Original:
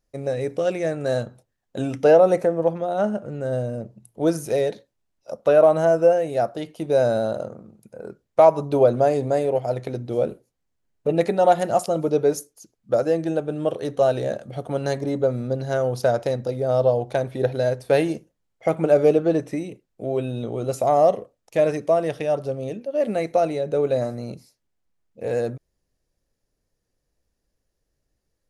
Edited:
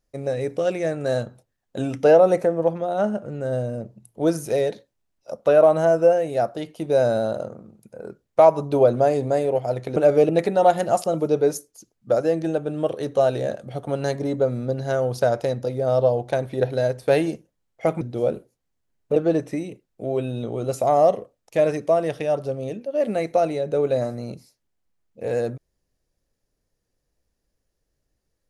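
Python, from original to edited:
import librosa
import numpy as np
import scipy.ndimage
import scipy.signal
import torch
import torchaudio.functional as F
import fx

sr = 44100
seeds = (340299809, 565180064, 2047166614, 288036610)

y = fx.edit(x, sr, fx.swap(start_s=9.96, length_s=1.15, other_s=18.83, other_length_s=0.33), tone=tone)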